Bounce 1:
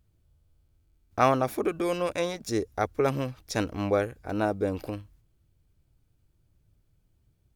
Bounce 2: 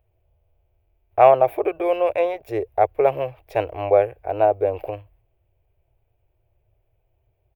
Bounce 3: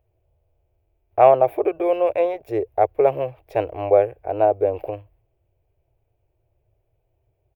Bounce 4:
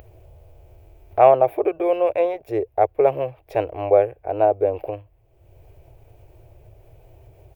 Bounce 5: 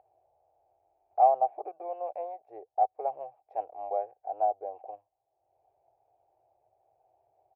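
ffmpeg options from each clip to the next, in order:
-af "firequalizer=gain_entry='entry(120,0);entry(200,-25);entry(360,4);entry(670,14);entry(1300,-4);entry(2500,6);entry(4000,-13);entry(6100,-23);entry(16000,4)':delay=0.05:min_phase=1"
-af "equalizer=f=270:w=0.39:g=6.5,volume=-4dB"
-af "acompressor=mode=upward:threshold=-30dB:ratio=2.5"
-af "bandpass=f=770:t=q:w=9.3:csg=0,volume=-2.5dB"

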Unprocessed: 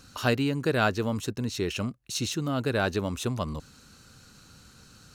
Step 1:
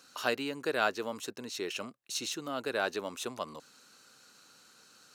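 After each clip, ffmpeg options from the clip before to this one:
-af "highpass=400,volume=-3.5dB"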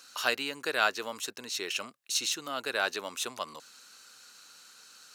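-af "tiltshelf=f=720:g=-6.5"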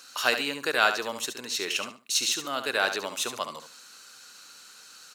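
-af "aecho=1:1:71|142|213:0.355|0.071|0.0142,volume=4dB"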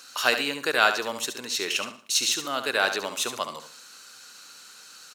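-af "aecho=1:1:116|232:0.0841|0.0269,volume=2dB"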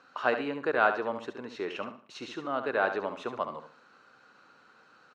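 -af "lowpass=1.2k"

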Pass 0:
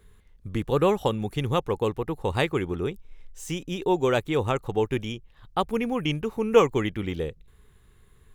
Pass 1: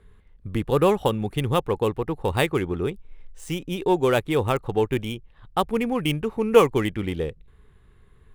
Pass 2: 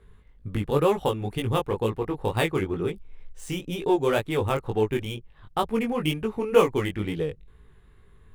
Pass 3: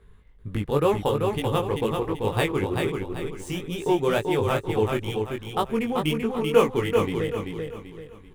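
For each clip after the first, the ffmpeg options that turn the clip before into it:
-af "adynamicsmooth=sensitivity=8:basefreq=3.7k,aexciter=amount=4.7:drive=2.8:freq=8.7k,volume=2.5dB"
-filter_complex "[0:a]asplit=2[a][b];[b]acompressor=threshold=-27dB:ratio=6,volume=-3dB[c];[a][c]amix=inputs=2:normalize=0,flanger=delay=17.5:depth=3.7:speed=2.1,volume=-1.5dB"
-af "aecho=1:1:387|774|1161|1548|1935:0.596|0.214|0.0772|0.0278|0.01"

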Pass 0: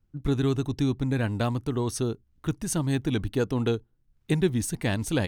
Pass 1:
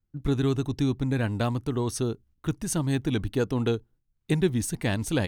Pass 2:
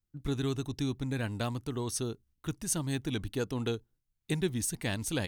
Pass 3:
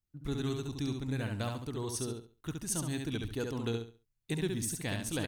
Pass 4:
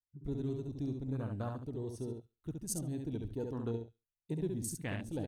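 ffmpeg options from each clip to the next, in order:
-af "agate=range=-9dB:threshold=-54dB:ratio=16:detection=peak"
-af "highshelf=f=2.5k:g=8,volume=-7.5dB"
-af "aecho=1:1:69|138|207|276:0.596|0.155|0.0403|0.0105,volume=-3.5dB"
-af "afwtdn=0.01,volume=-2.5dB"

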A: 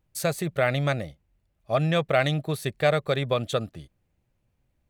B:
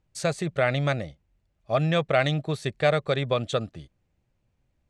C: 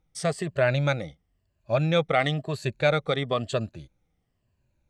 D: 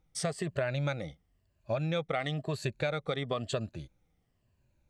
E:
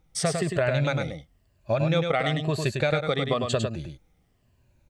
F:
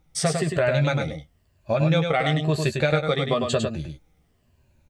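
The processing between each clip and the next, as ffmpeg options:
-af "lowpass=f=8.2k:w=0.5412,lowpass=f=8.2k:w=1.3066"
-af "afftfilt=real='re*pow(10,10/40*sin(2*PI*(1.4*log(max(b,1)*sr/1024/100)/log(2)-(-1)*(pts-256)/sr)))':imag='im*pow(10,10/40*sin(2*PI*(1.4*log(max(b,1)*sr/1024/100)/log(2)-(-1)*(pts-256)/sr)))':win_size=1024:overlap=0.75,volume=-1.5dB"
-af "acompressor=threshold=-29dB:ratio=6"
-af "aecho=1:1:102:0.562,volume=7dB"
-filter_complex "[0:a]asplit=2[a][b];[b]adelay=13,volume=-7dB[c];[a][c]amix=inputs=2:normalize=0,volume=1.5dB"

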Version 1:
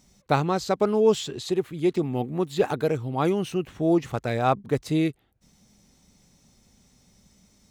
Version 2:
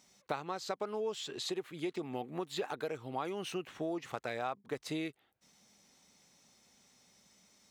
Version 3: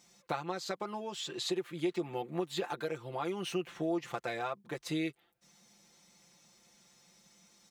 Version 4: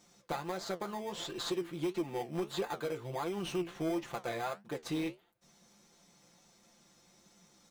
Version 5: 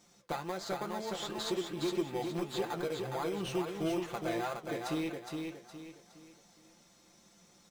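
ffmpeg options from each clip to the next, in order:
-af "highpass=f=880:p=1,highshelf=f=5.1k:g=-6.5,acompressor=threshold=-35dB:ratio=6,volume=1dB"
-af "aecho=1:1:5.8:0.79"
-filter_complex "[0:a]asplit=2[a][b];[b]acrusher=samples=16:mix=1:aa=0.000001,volume=-5.5dB[c];[a][c]amix=inputs=2:normalize=0,flanger=delay=8.6:depth=9.6:regen=64:speed=1.5:shape=triangular,asoftclip=type=tanh:threshold=-28dB,volume=2dB"
-af "aecho=1:1:414|828|1242|1656|2070:0.596|0.214|0.0772|0.0278|0.01"

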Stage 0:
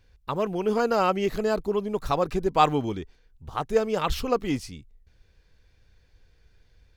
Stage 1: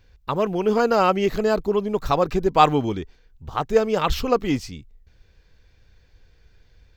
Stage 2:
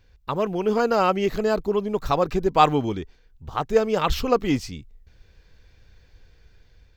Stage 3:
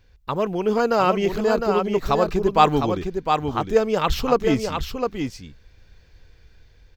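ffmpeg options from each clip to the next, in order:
-af "equalizer=f=9.8k:w=3.6:g=-14.5,volume=4.5dB"
-af "dynaudnorm=f=620:g=5:m=11.5dB,volume=-2dB"
-af "aecho=1:1:707:0.531,volume=1dB"

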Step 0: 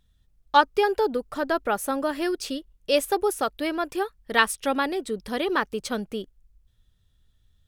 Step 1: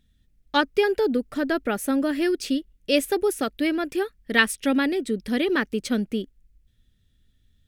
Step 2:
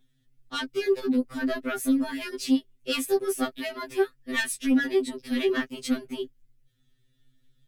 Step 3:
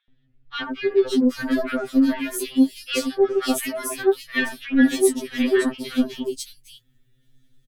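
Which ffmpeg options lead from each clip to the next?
-af "equalizer=f=250:t=o:w=1:g=9,equalizer=f=1k:t=o:w=1:g=-10,equalizer=f=2k:t=o:w=1:g=6"
-filter_complex "[0:a]acrossover=split=460|2100[a][b][c];[b]alimiter=limit=-19dB:level=0:latency=1:release=475[d];[a][d][c]amix=inputs=3:normalize=0,asoftclip=type=tanh:threshold=-17.5dB,afftfilt=real='re*2.45*eq(mod(b,6),0)':imag='im*2.45*eq(mod(b,6),0)':win_size=2048:overlap=0.75,volume=1.5dB"
-filter_complex "[0:a]acrossover=split=1200|3600[a][b][c];[a]adelay=80[d];[c]adelay=550[e];[d][b][e]amix=inputs=3:normalize=0,volume=6dB"

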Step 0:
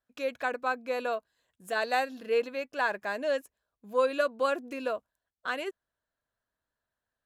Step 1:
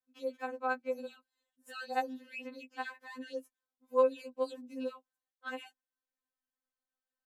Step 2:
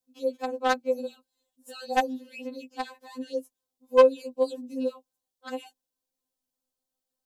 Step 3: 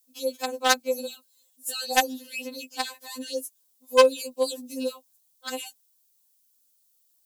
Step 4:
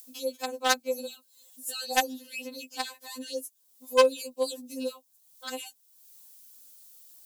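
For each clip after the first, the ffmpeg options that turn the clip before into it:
-af "afftfilt=real='re*3.46*eq(mod(b,12),0)':imag='im*3.46*eq(mod(b,12),0)':win_size=2048:overlap=0.75,volume=-7.5dB"
-filter_complex "[0:a]acrossover=split=800|2900[a][b][c];[a]crystalizer=i=9.5:c=0[d];[b]acrusher=bits=4:mix=0:aa=0.5[e];[d][e][c]amix=inputs=3:normalize=0,volume=8.5dB"
-af "crystalizer=i=8.5:c=0,volume=-2dB"
-af "acompressor=mode=upward:threshold=-34dB:ratio=2.5,volume=-3.5dB"

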